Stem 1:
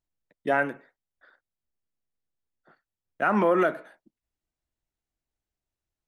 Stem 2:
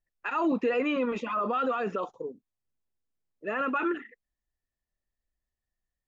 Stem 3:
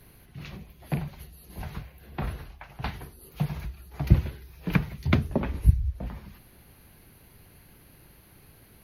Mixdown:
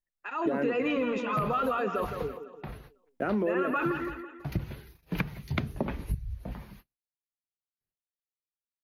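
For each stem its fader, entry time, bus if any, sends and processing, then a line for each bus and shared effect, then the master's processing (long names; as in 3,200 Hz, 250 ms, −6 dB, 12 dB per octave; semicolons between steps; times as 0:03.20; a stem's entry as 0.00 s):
−7.5 dB, 0.00 s, bus A, no send, no echo send, low shelf with overshoot 630 Hz +10.5 dB, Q 1.5
−7.0 dB, 0.00 s, no bus, no send, echo send −8.5 dB, automatic gain control gain up to 8 dB
−1.5 dB, 0.45 s, bus A, no send, no echo send, noise gate with hold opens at −42 dBFS; automatic ducking −7 dB, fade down 0.25 s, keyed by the first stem
bus A: 0.0 dB, noise gate −47 dBFS, range −40 dB; downward compressor, threshold −22 dBFS, peak gain reduction 10 dB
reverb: not used
echo: repeating echo 166 ms, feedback 45%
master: parametric band 73 Hz −10 dB 0.46 octaves; downward compressor, threshold −24 dBFS, peak gain reduction 6 dB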